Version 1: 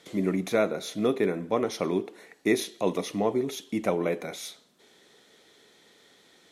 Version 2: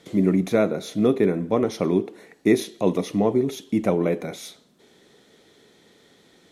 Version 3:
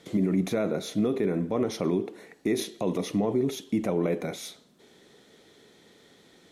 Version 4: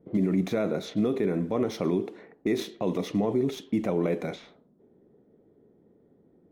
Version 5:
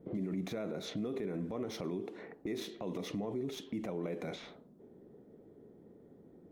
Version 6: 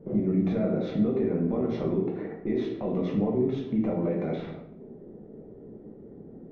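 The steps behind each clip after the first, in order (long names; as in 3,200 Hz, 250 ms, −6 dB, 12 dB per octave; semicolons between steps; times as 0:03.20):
low-shelf EQ 410 Hz +10.5 dB
brickwall limiter −16 dBFS, peak gain reduction 9 dB; level −1 dB
running median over 5 samples; low-pass that shuts in the quiet parts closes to 380 Hz, open at −26 dBFS
downward compressor 3 to 1, threshold −38 dBFS, peak gain reduction 13 dB; brickwall limiter −32.5 dBFS, peak gain reduction 8 dB; level +3 dB
head-to-tape spacing loss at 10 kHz 41 dB; rectangular room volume 140 cubic metres, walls mixed, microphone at 1.2 metres; level +7.5 dB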